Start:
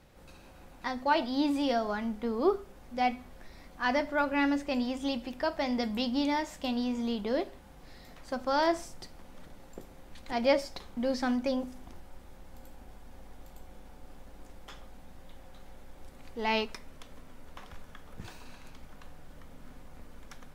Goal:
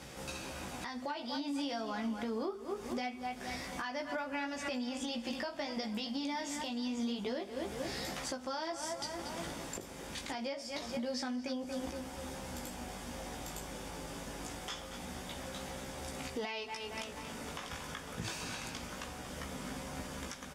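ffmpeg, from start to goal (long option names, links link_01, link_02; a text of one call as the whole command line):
ffmpeg -i in.wav -filter_complex "[0:a]lowpass=7600,asplit=2[link_01][link_02];[link_02]adelay=232,lowpass=frequency=4500:poles=1,volume=-13.5dB,asplit=2[link_03][link_04];[link_04]adelay=232,lowpass=frequency=4500:poles=1,volume=0.39,asplit=2[link_05][link_06];[link_06]adelay=232,lowpass=frequency=4500:poles=1,volume=0.39,asplit=2[link_07][link_08];[link_08]adelay=232,lowpass=frequency=4500:poles=1,volume=0.39[link_09];[link_03][link_05][link_07][link_09]amix=inputs=4:normalize=0[link_10];[link_01][link_10]amix=inputs=2:normalize=0,flanger=delay=15:depth=3.3:speed=0.25,highpass=85,acompressor=threshold=-44dB:ratio=12,crystalizer=i=3:c=0,bandreject=frequency=4100:width=11,alimiter=level_in=18dB:limit=-24dB:level=0:latency=1:release=375,volume=-18dB,volume=13.5dB" out.wav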